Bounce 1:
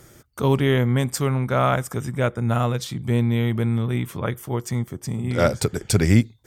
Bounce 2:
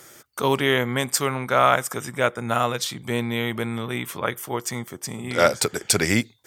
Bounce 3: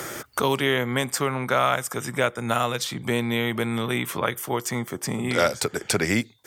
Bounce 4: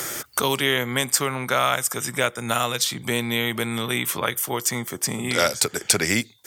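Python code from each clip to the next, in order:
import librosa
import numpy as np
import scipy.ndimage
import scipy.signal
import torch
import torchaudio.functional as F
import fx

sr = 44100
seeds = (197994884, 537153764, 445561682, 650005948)

y1 = fx.highpass(x, sr, hz=790.0, slope=6)
y1 = y1 * librosa.db_to_amplitude(6.0)
y2 = fx.band_squash(y1, sr, depth_pct=70)
y2 = y2 * librosa.db_to_amplitude(-1.5)
y3 = fx.high_shelf(y2, sr, hz=2700.0, db=10.5)
y3 = y3 * librosa.db_to_amplitude(-1.5)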